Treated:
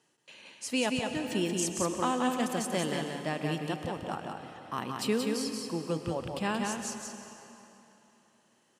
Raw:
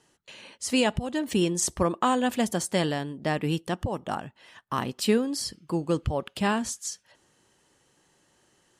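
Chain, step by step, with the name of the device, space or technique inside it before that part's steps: PA in a hall (HPF 130 Hz 12 dB/oct; bell 2500 Hz +3 dB 0.29 oct; echo 0.179 s -4 dB; reverb RT60 3.2 s, pre-delay 99 ms, DRR 7.5 dB); gain -6.5 dB

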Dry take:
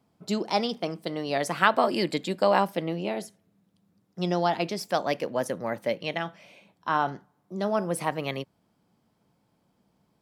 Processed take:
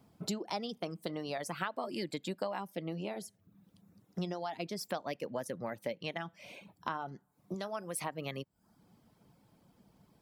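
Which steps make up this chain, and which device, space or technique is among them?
ASMR close-microphone chain (low shelf 180 Hz +5 dB; compressor 5:1, threshold -39 dBFS, peak gain reduction 22 dB; high shelf 11000 Hz +5.5 dB); reverb removal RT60 0.59 s; 7.54–8.04 tilt shelf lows -5.5 dB, about 740 Hz; gain +3.5 dB

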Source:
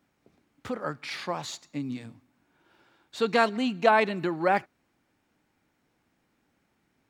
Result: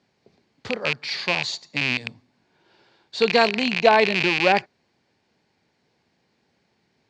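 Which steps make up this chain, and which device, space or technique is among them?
car door speaker with a rattle (rattling part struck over -39 dBFS, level -15 dBFS; speaker cabinet 85–6800 Hz, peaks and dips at 290 Hz -8 dB, 410 Hz +4 dB, 1300 Hz -8 dB, 4500 Hz +9 dB); gain +5 dB

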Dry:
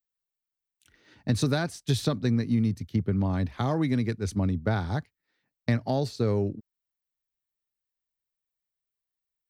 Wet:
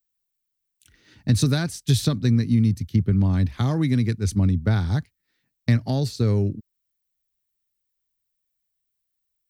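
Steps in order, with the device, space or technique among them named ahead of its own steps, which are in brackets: smiley-face EQ (low shelf 180 Hz +6.5 dB; bell 690 Hz -7 dB 1.9 oct; high shelf 5900 Hz +6.5 dB); gain +3.5 dB

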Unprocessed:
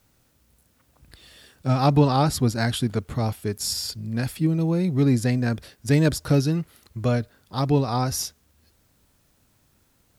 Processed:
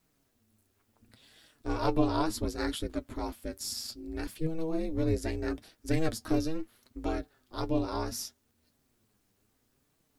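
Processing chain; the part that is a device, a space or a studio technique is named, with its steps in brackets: alien voice (ring modulator 160 Hz; flange 0.7 Hz, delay 6 ms, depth 4.5 ms, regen +45%); gain -2.5 dB

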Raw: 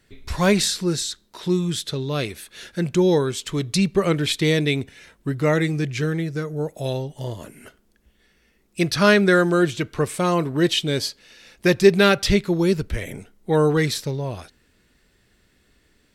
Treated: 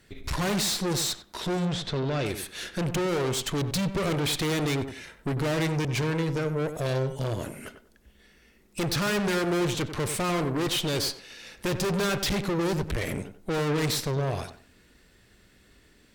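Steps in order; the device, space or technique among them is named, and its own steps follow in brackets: rockabilly slapback (tube stage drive 32 dB, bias 0.7; tape echo 94 ms, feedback 27%, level -7.5 dB, low-pass 1400 Hz); 1.65–2.26 air absorption 120 m; gain +6.5 dB

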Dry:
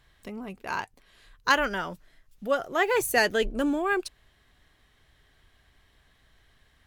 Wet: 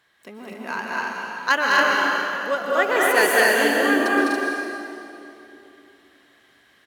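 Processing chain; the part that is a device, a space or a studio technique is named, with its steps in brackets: stadium PA (HPF 250 Hz 12 dB/oct; bell 1600 Hz +4 dB 0.66 oct; loudspeakers at several distances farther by 70 m -3 dB, 85 m -3 dB, 96 m -3 dB; reverb RT60 2.8 s, pre-delay 0.114 s, DRR 0 dB); 1.91–3.01 HPF 190 Hz

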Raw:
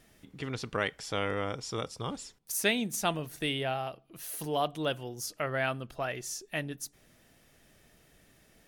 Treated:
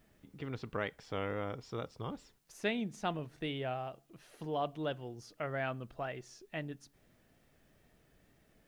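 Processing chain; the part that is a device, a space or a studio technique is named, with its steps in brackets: cassette deck with a dirty head (tape spacing loss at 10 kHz 23 dB; wow and flutter; white noise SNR 38 dB); gain -3.5 dB

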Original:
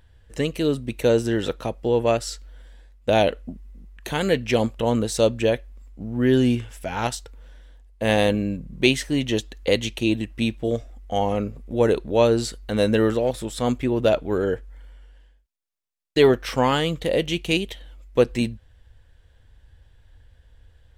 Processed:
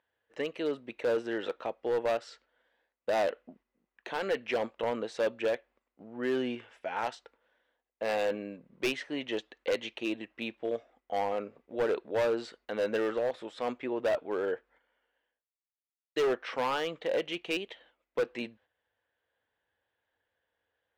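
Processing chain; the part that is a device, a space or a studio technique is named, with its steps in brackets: walkie-talkie (BPF 460–2500 Hz; hard clip -19.5 dBFS, distortion -10 dB; gate -56 dBFS, range -8 dB); gain -4.5 dB

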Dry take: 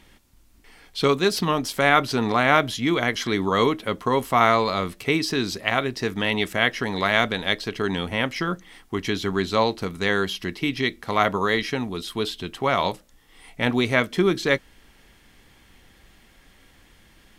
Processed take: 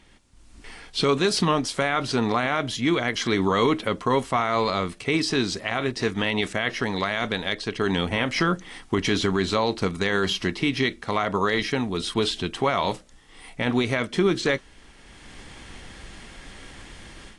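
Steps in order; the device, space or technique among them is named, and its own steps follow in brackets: low-bitrate web radio (AGC gain up to 13.5 dB; limiter -9.5 dBFS, peak gain reduction 9 dB; gain -2 dB; AAC 48 kbps 22050 Hz)

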